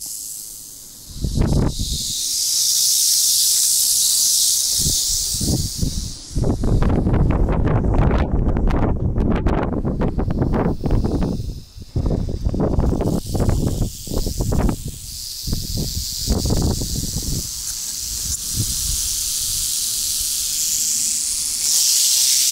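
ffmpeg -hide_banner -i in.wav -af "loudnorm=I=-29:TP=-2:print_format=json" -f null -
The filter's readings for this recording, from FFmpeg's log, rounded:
"input_i" : "-17.9",
"input_tp" : "-3.6",
"input_lra" : "8.0",
"input_thresh" : "-28.1",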